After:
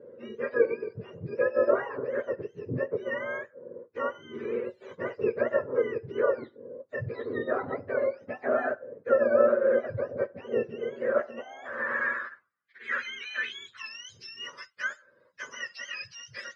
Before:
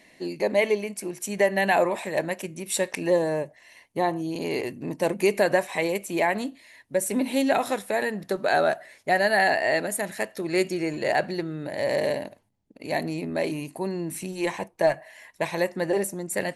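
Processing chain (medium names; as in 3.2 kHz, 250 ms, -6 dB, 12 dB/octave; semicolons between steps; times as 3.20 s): spectrum inverted on a logarithmic axis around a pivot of 1 kHz; band-pass sweep 500 Hz -> 4.6 kHz, 10.95–14.04 s; in parallel at -2.5 dB: compression, threshold -44 dBFS, peak gain reduction 20 dB; on the sum: high-pass 130 Hz 12 dB/octave; resonant high shelf 2.5 kHz -9 dB, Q 1.5; trim +4.5 dB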